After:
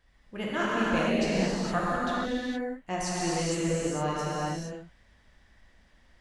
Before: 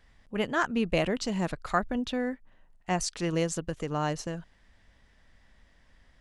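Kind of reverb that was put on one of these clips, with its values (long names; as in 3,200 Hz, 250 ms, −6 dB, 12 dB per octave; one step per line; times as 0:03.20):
reverb whose tail is shaped and stops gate 490 ms flat, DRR −7.5 dB
level −6.5 dB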